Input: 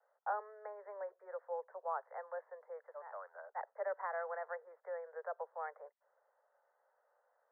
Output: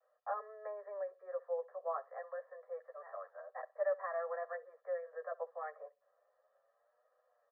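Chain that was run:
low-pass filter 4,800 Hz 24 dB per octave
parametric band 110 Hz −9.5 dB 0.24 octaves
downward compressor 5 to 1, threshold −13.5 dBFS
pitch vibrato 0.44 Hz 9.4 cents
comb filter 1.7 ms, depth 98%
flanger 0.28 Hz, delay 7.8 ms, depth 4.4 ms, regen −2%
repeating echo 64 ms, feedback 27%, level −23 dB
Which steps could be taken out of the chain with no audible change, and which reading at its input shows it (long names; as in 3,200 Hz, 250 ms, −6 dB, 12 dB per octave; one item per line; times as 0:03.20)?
low-pass filter 4,800 Hz: nothing at its input above 2,000 Hz
parametric band 110 Hz: nothing at its input below 380 Hz
downward compressor, threshold −13.5 dBFS: peak of its input −26.0 dBFS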